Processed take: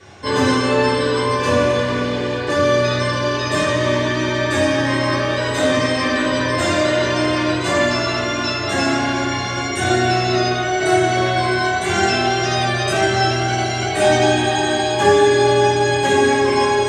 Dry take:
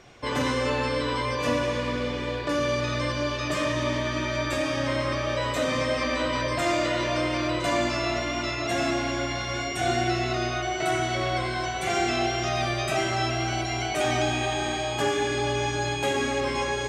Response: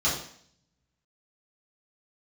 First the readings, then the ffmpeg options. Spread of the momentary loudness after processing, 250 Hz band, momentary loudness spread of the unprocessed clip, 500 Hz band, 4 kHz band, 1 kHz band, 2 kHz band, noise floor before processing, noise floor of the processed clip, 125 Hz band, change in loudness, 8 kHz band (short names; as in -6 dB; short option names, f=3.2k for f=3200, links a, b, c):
5 LU, +9.0 dB, 3 LU, +10.0 dB, +8.0 dB, +9.0 dB, +9.0 dB, -30 dBFS, -22 dBFS, +8.0 dB, +9.0 dB, +8.0 dB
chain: -filter_complex "[1:a]atrim=start_sample=2205,atrim=end_sample=6615,asetrate=57330,aresample=44100[a];[0:a][a]afir=irnorm=-1:irlink=0,volume=-1dB"